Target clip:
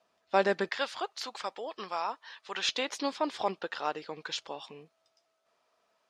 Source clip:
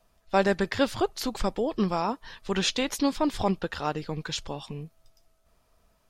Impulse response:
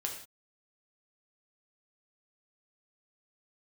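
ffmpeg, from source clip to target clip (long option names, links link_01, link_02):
-af "asetnsamples=nb_out_samples=441:pad=0,asendcmd='0.69 highpass f 800;2.69 highpass f 450',highpass=300,lowpass=5700,volume=-2dB"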